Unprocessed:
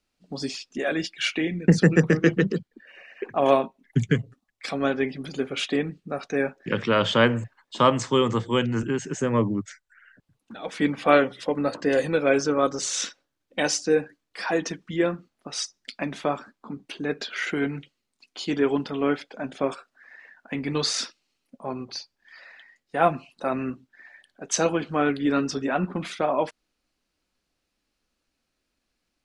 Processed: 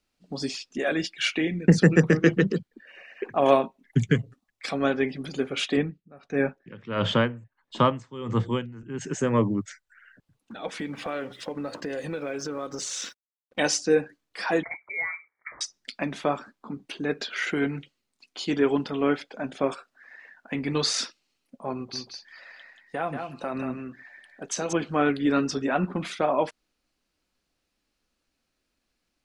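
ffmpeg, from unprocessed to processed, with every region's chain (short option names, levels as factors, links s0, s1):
-filter_complex "[0:a]asettb=1/sr,asplit=3[s0][s1][s2];[s0]atrim=end=5.774[s3];[s1]atrim=start=5.77:end=9.01,asetpts=PTS-STARTPTS,afade=t=in:d=0.004:c=qsin,afade=t=out:st=3.236:d=0.004:c=qsin,bass=f=250:g=6,treble=f=4000:g=-7,aeval=exprs='val(0)*pow(10,-21*(0.5-0.5*cos(2*PI*1.5*n/s))/20)':c=same[s4];[s2]atrim=start=9.006[s5];[s3][s4]acrossfade=d=0.004:c1=hsin:c2=qsin[s6];[s6][s5]acrossfade=d=0.004:c1=qsin:c2=hsin,asettb=1/sr,asplit=3[s7][s8][s9];[s7]atrim=end=10.794[s10];[s8]atrim=start=10.79:end=13.59,asetpts=PTS-STARTPTS,afade=t=in:d=0.004:c=qsin,afade=t=out:st=2.796:d=0.004:c=qsin,acompressor=threshold=0.0355:ratio=5:attack=3.2:release=140:knee=1:detection=peak,aeval=exprs='sgn(val(0))*max(abs(val(0))-0.00106,0)':c=same[s11];[s9]atrim=start=13.586[s12];[s10][s11]acrossfade=d=0.004:c1=hsin:c2=qsin[s13];[s13][s12]acrossfade=d=0.004:c1=qsin:c2=hsin,asettb=1/sr,asplit=3[s14][s15][s16];[s14]atrim=end=14.634[s17];[s15]atrim=start=14.63:end=15.61,asetpts=PTS-STARTPTS,afade=t=in:d=0.004:c=qsin,afade=t=out:st=0.976:d=0.004:c=qsin,highpass=180,acompressor=threshold=0.0398:ratio=3:attack=3.2:release=140:knee=1:detection=peak,lowpass=f=2100:t=q:w=0.5098,lowpass=f=2100:t=q:w=0.6013,lowpass=f=2100:t=q:w=0.9,lowpass=f=2100:t=q:w=2.563,afreqshift=-2500[s18];[s16]atrim=start=15.606[s19];[s17][s18]acrossfade=d=0.004:c1=hsin:c2=qsin[s20];[s20][s19]acrossfade=d=0.004:c1=qsin:c2=hsin,asettb=1/sr,asplit=3[s21][s22][s23];[s21]atrim=end=21.754[s24];[s22]atrim=start=21.75:end=24.73,asetpts=PTS-STARTPTS,afade=t=in:d=0.004:c=qsin,afade=t=out:st=2.976:d=0.004:c=qsin,acompressor=threshold=0.0447:ratio=3:attack=3.2:release=140:knee=1:detection=peak,aecho=1:1:184:0.501,atrim=end_sample=131418[s25];[s23]atrim=start=24.726[s26];[s24][s25]acrossfade=d=0.004:c1=hsin:c2=qsin[s27];[s27][s26]acrossfade=d=0.004:c1=qsin:c2=hsin"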